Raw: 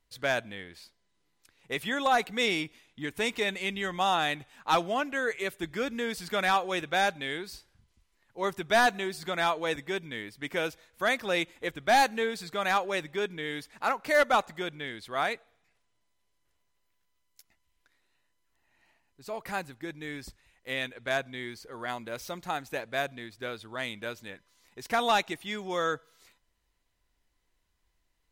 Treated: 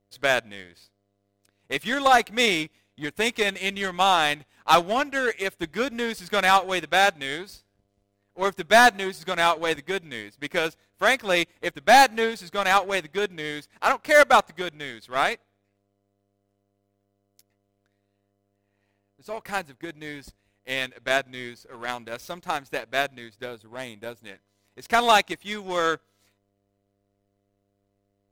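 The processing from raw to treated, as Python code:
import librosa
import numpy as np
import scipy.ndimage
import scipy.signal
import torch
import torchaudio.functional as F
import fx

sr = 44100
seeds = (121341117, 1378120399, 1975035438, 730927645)

y = fx.dmg_buzz(x, sr, base_hz=100.0, harmonics=7, level_db=-65.0, tilt_db=-3, odd_only=False)
y = fx.spec_box(y, sr, start_s=23.45, length_s=0.8, low_hz=980.0, high_hz=6800.0, gain_db=-7)
y = fx.power_curve(y, sr, exponent=1.4)
y = F.gain(torch.from_numpy(y), 8.5).numpy()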